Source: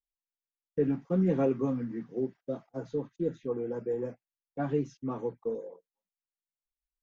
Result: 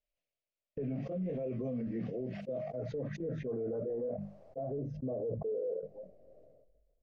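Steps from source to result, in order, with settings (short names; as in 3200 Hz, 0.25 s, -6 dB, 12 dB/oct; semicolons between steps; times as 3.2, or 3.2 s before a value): repeated pitch sweeps -1 st, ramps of 0.956 s; EQ curve 110 Hz 0 dB, 360 Hz -7 dB, 620 Hz +9 dB, 900 Hz -20 dB, 2100 Hz -1 dB; low-pass sweep 2700 Hz -> 490 Hz, 2.36–5.49; band shelf 2300 Hz -8.5 dB; limiter -38 dBFS, peak gain reduction 21 dB; notches 50/100/150/200 Hz; sustainer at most 32 dB/s; gain +7.5 dB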